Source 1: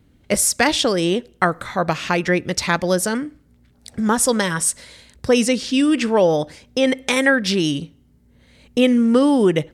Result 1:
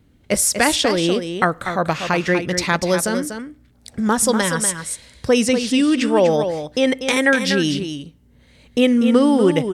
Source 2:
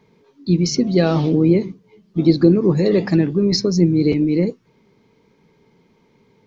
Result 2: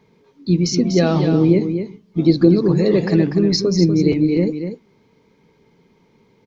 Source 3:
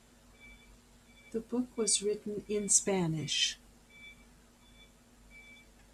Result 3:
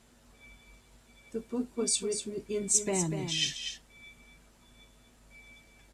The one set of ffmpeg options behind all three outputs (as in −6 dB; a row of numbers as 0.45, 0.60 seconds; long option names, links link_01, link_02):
-af "aecho=1:1:243:0.398"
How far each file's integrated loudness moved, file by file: +0.5, +0.5, +0.5 LU